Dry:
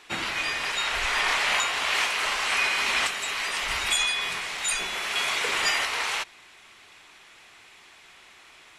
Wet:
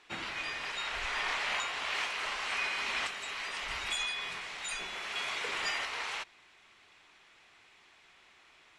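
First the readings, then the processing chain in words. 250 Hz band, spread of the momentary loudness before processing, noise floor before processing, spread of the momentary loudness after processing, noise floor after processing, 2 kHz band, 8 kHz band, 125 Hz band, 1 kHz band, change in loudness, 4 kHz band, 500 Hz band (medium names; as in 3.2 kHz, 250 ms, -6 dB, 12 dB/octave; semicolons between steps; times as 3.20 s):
-8.5 dB, 5 LU, -52 dBFS, 6 LU, -62 dBFS, -9.0 dB, -13.5 dB, -8.5 dB, -9.0 dB, -9.5 dB, -10.0 dB, -8.5 dB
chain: distance through air 54 m; trim -8.5 dB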